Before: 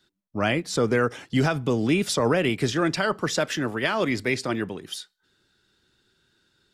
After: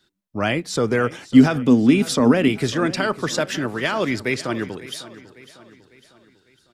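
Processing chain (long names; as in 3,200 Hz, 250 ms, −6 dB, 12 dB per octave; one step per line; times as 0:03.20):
0:01.34–0:02.48: parametric band 250 Hz +14.5 dB 0.31 octaves
repeating echo 551 ms, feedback 47%, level −17 dB
level +2 dB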